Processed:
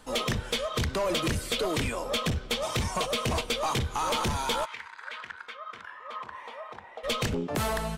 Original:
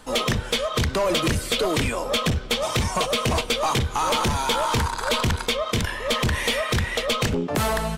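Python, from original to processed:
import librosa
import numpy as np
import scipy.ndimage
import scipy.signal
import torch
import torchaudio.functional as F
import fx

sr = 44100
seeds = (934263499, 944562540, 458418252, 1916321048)

y = fx.bandpass_q(x, sr, hz=fx.line((4.64, 2200.0), (7.03, 760.0)), q=3.4, at=(4.64, 7.03), fade=0.02)
y = y * 10.0 ** (-6.0 / 20.0)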